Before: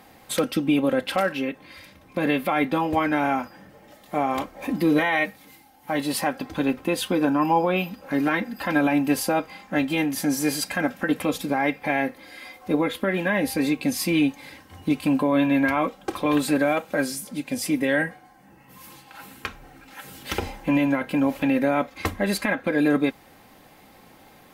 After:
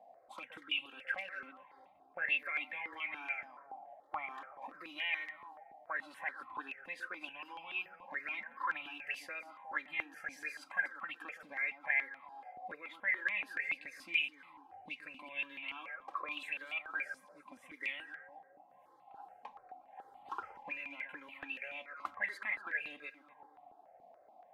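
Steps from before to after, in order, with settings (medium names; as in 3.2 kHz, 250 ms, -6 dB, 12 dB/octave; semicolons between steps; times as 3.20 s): echo whose repeats swap between lows and highs 120 ms, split 1.3 kHz, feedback 56%, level -10.5 dB; auto-wah 650–2800 Hz, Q 11, up, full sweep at -17 dBFS; stepped phaser 7 Hz 370–1600 Hz; trim +5 dB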